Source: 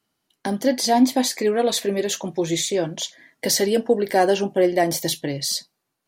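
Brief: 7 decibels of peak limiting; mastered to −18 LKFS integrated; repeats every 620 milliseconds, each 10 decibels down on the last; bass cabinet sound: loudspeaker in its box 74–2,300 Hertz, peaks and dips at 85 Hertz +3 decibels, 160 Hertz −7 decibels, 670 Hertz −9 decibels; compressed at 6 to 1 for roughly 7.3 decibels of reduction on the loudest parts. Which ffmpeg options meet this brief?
ffmpeg -i in.wav -af "acompressor=threshold=-19dB:ratio=6,alimiter=limit=-17.5dB:level=0:latency=1,highpass=frequency=74:width=0.5412,highpass=frequency=74:width=1.3066,equalizer=frequency=85:width_type=q:width=4:gain=3,equalizer=frequency=160:width_type=q:width=4:gain=-7,equalizer=frequency=670:width_type=q:width=4:gain=-9,lowpass=frequency=2300:width=0.5412,lowpass=frequency=2300:width=1.3066,aecho=1:1:620|1240|1860|2480:0.316|0.101|0.0324|0.0104,volume=11.5dB" out.wav

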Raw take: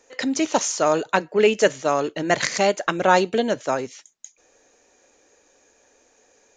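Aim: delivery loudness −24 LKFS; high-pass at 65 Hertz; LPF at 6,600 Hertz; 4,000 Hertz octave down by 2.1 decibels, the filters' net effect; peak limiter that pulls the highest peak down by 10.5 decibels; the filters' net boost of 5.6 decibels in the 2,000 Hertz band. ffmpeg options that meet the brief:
ffmpeg -i in.wav -af "highpass=65,lowpass=6600,equalizer=frequency=2000:width_type=o:gain=8.5,equalizer=frequency=4000:width_type=o:gain=-6.5,alimiter=limit=-11.5dB:level=0:latency=1" out.wav

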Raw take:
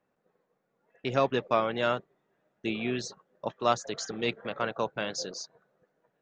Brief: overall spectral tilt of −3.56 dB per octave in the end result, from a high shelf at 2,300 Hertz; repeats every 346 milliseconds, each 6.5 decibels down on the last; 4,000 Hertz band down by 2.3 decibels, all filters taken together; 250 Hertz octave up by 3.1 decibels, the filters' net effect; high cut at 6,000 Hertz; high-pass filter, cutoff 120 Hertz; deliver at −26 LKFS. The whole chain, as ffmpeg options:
ffmpeg -i in.wav -af "highpass=120,lowpass=6000,equalizer=frequency=250:width_type=o:gain=4,highshelf=frequency=2300:gain=3.5,equalizer=frequency=4000:width_type=o:gain=-5.5,aecho=1:1:346|692|1038|1384|1730|2076:0.473|0.222|0.105|0.0491|0.0231|0.0109,volume=4dB" out.wav

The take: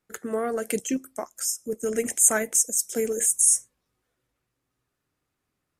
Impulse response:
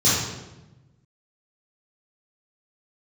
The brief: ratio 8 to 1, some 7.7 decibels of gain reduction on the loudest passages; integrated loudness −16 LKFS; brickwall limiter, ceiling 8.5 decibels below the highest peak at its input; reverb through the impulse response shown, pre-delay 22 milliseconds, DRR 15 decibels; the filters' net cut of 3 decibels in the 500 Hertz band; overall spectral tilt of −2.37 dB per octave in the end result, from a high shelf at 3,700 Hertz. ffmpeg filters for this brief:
-filter_complex "[0:a]equalizer=frequency=500:width_type=o:gain=-3.5,highshelf=frequency=3700:gain=3.5,acompressor=threshold=-19dB:ratio=8,alimiter=limit=-15dB:level=0:latency=1,asplit=2[link_01][link_02];[1:a]atrim=start_sample=2205,adelay=22[link_03];[link_02][link_03]afir=irnorm=-1:irlink=0,volume=-33dB[link_04];[link_01][link_04]amix=inputs=2:normalize=0,volume=11dB"

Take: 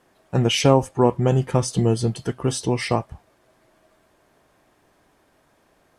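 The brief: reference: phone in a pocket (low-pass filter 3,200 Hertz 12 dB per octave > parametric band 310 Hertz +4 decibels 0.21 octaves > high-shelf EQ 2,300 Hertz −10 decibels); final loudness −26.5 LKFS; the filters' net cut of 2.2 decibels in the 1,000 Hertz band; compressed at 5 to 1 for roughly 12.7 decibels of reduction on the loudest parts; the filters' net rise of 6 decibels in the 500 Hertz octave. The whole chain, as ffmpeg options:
ffmpeg -i in.wav -af "equalizer=frequency=500:width_type=o:gain=8.5,equalizer=frequency=1000:width_type=o:gain=-5,acompressor=threshold=-21dB:ratio=5,lowpass=3200,equalizer=frequency=310:width_type=o:width=0.21:gain=4,highshelf=frequency=2300:gain=-10,volume=0.5dB" out.wav

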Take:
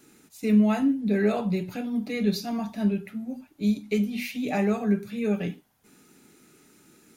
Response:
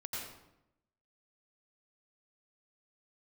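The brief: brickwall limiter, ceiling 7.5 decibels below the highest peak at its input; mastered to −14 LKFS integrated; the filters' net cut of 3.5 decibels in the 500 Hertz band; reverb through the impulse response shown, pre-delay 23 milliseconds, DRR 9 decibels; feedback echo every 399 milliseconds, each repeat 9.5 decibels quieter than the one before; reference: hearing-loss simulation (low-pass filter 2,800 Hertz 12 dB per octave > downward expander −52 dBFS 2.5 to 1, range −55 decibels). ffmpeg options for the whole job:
-filter_complex "[0:a]equalizer=frequency=500:width_type=o:gain=-4.5,alimiter=limit=-20dB:level=0:latency=1,aecho=1:1:399|798|1197|1596:0.335|0.111|0.0365|0.012,asplit=2[link_01][link_02];[1:a]atrim=start_sample=2205,adelay=23[link_03];[link_02][link_03]afir=irnorm=-1:irlink=0,volume=-10dB[link_04];[link_01][link_04]amix=inputs=2:normalize=0,lowpass=2800,agate=range=-55dB:threshold=-52dB:ratio=2.5,volume=14.5dB"

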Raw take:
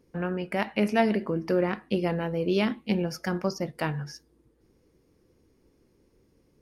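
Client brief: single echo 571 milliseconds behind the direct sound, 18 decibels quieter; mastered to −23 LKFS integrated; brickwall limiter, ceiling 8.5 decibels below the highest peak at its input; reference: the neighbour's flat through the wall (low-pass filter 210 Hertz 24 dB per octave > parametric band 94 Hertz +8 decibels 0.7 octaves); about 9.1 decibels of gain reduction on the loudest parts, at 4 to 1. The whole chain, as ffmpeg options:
ffmpeg -i in.wav -af "acompressor=threshold=-28dB:ratio=4,alimiter=level_in=1dB:limit=-24dB:level=0:latency=1,volume=-1dB,lowpass=frequency=210:width=0.5412,lowpass=frequency=210:width=1.3066,equalizer=frequency=94:width_type=o:width=0.7:gain=8,aecho=1:1:571:0.126,volume=16.5dB" out.wav

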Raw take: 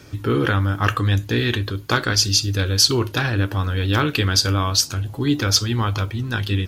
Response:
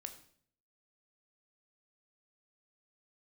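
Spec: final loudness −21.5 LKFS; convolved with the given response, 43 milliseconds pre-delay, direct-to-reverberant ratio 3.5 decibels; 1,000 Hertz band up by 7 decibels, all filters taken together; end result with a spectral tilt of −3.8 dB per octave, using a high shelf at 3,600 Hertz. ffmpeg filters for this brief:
-filter_complex "[0:a]equalizer=frequency=1000:width_type=o:gain=8,highshelf=frequency=3600:gain=9,asplit=2[link_01][link_02];[1:a]atrim=start_sample=2205,adelay=43[link_03];[link_02][link_03]afir=irnorm=-1:irlink=0,volume=0.5dB[link_04];[link_01][link_04]amix=inputs=2:normalize=0,volume=-7.5dB"

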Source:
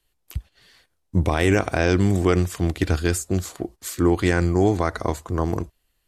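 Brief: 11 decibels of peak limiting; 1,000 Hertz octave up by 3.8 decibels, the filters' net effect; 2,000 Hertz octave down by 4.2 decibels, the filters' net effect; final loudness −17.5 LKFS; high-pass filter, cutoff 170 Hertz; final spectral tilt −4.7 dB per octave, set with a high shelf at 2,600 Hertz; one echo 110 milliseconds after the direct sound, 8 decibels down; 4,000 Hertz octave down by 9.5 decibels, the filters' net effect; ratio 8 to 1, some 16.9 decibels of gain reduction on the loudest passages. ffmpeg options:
ffmpeg -i in.wav -af "highpass=170,equalizer=frequency=1000:width_type=o:gain=7.5,equalizer=frequency=2000:width_type=o:gain=-6,highshelf=frequency=2600:gain=-3.5,equalizer=frequency=4000:width_type=o:gain=-8,acompressor=threshold=-32dB:ratio=8,alimiter=level_in=5.5dB:limit=-24dB:level=0:latency=1,volume=-5.5dB,aecho=1:1:110:0.398,volume=23.5dB" out.wav

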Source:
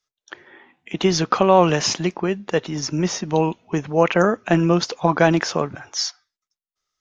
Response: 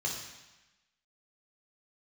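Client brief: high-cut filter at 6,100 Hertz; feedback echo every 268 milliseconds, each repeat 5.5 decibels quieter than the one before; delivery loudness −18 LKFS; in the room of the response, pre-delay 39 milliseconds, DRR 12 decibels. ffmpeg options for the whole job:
-filter_complex "[0:a]lowpass=6100,aecho=1:1:268|536|804|1072|1340|1608|1876:0.531|0.281|0.149|0.079|0.0419|0.0222|0.0118,asplit=2[link_01][link_02];[1:a]atrim=start_sample=2205,adelay=39[link_03];[link_02][link_03]afir=irnorm=-1:irlink=0,volume=-16.5dB[link_04];[link_01][link_04]amix=inputs=2:normalize=0,volume=0.5dB"

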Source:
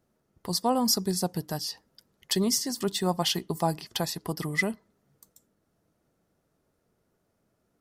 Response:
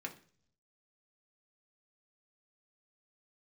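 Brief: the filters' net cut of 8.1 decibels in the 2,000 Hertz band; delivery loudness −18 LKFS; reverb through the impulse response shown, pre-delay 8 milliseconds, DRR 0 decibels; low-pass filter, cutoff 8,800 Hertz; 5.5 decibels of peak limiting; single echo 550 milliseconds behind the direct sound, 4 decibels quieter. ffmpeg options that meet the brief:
-filter_complex "[0:a]lowpass=8800,equalizer=frequency=2000:width_type=o:gain=-8.5,alimiter=limit=-19dB:level=0:latency=1,aecho=1:1:550:0.631,asplit=2[link_01][link_02];[1:a]atrim=start_sample=2205,adelay=8[link_03];[link_02][link_03]afir=irnorm=-1:irlink=0,volume=0.5dB[link_04];[link_01][link_04]amix=inputs=2:normalize=0,volume=9.5dB"

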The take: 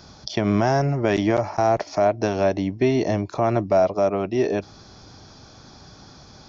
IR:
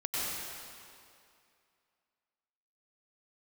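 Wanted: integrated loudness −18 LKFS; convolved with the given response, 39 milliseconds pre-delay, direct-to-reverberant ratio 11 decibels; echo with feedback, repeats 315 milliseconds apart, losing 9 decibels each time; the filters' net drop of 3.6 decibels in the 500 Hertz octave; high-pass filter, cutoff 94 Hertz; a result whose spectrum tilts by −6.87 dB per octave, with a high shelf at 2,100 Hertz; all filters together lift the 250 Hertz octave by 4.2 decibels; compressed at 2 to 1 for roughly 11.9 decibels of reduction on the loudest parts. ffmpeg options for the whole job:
-filter_complex "[0:a]highpass=94,equalizer=frequency=250:width_type=o:gain=8,equalizer=frequency=500:width_type=o:gain=-7,highshelf=frequency=2100:gain=-7.5,acompressor=threshold=-36dB:ratio=2,aecho=1:1:315|630|945|1260:0.355|0.124|0.0435|0.0152,asplit=2[link_01][link_02];[1:a]atrim=start_sample=2205,adelay=39[link_03];[link_02][link_03]afir=irnorm=-1:irlink=0,volume=-18dB[link_04];[link_01][link_04]amix=inputs=2:normalize=0,volume=13.5dB"

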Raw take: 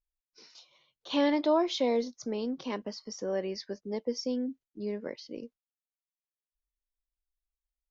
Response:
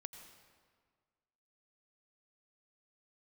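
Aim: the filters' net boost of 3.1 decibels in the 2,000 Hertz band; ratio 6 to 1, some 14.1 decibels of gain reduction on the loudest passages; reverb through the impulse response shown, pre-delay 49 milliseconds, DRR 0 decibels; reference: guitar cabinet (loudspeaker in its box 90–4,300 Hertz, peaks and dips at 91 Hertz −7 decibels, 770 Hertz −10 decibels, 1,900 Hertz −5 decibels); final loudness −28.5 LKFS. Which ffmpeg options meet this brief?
-filter_complex "[0:a]equalizer=frequency=2000:width_type=o:gain=7,acompressor=threshold=-36dB:ratio=6,asplit=2[link_01][link_02];[1:a]atrim=start_sample=2205,adelay=49[link_03];[link_02][link_03]afir=irnorm=-1:irlink=0,volume=4.5dB[link_04];[link_01][link_04]amix=inputs=2:normalize=0,highpass=90,equalizer=frequency=91:width_type=q:width=4:gain=-7,equalizer=frequency=770:width_type=q:width=4:gain=-10,equalizer=frequency=1900:width_type=q:width=4:gain=-5,lowpass=frequency=4300:width=0.5412,lowpass=frequency=4300:width=1.3066,volume=10.5dB"

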